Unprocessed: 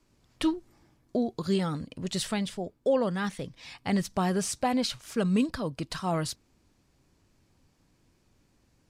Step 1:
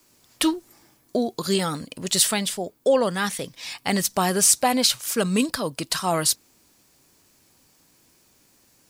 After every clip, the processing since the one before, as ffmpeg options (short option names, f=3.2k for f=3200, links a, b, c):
-af "aemphasis=mode=production:type=bsi,volume=7.5dB"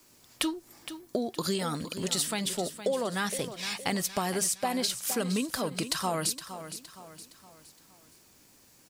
-af "acompressor=threshold=-27dB:ratio=6,aecho=1:1:465|930|1395|1860:0.266|0.114|0.0492|0.0212"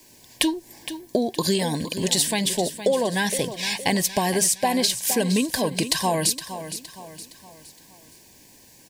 -af "asuperstop=centerf=1300:order=12:qfactor=3.2,volume=8dB"